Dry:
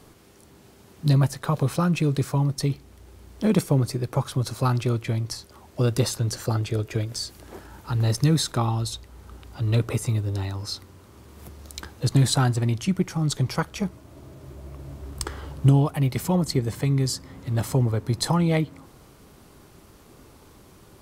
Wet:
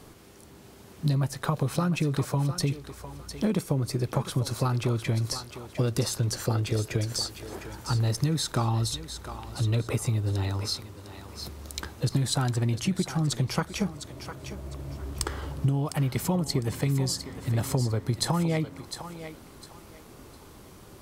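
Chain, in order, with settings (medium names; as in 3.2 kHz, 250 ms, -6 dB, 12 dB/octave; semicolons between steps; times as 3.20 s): compression 6:1, threshold -24 dBFS, peak gain reduction 11.5 dB; thinning echo 705 ms, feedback 27%, high-pass 420 Hz, level -9 dB; trim +1.5 dB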